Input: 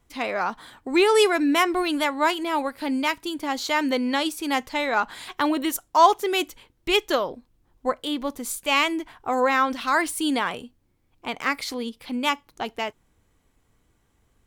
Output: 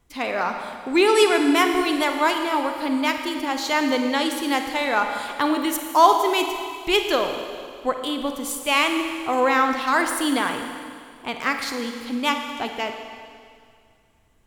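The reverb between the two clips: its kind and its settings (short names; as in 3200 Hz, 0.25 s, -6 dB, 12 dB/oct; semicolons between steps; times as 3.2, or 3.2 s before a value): Schroeder reverb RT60 2.2 s, DRR 5 dB; gain +1 dB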